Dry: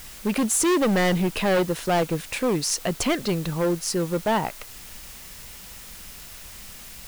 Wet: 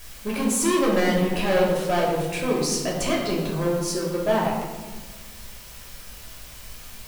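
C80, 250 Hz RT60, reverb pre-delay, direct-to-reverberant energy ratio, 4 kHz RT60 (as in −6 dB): 4.0 dB, 1.9 s, 3 ms, −4.5 dB, 0.80 s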